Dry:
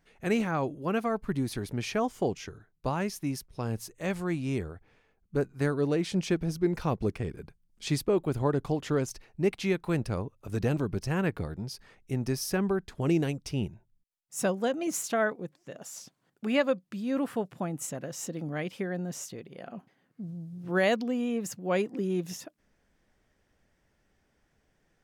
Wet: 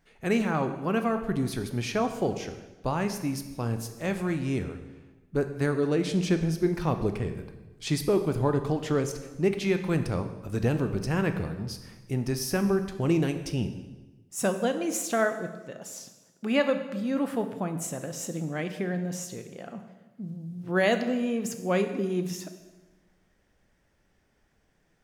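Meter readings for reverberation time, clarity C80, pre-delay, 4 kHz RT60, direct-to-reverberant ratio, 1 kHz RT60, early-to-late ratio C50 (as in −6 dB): 1.1 s, 11.5 dB, 13 ms, 1.0 s, 7.5 dB, 1.1 s, 10.0 dB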